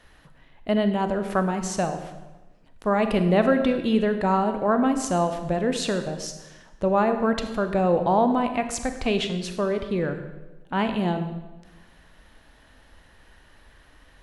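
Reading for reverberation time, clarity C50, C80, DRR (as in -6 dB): 1.1 s, 9.0 dB, 10.5 dB, 7.5 dB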